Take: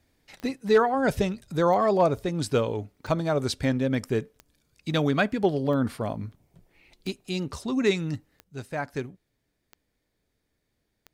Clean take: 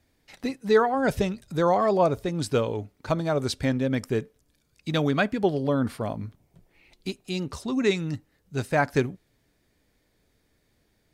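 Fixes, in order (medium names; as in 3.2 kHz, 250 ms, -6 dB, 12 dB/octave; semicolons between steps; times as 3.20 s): clip repair -12 dBFS; de-click; gain correction +8.5 dB, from 8.44 s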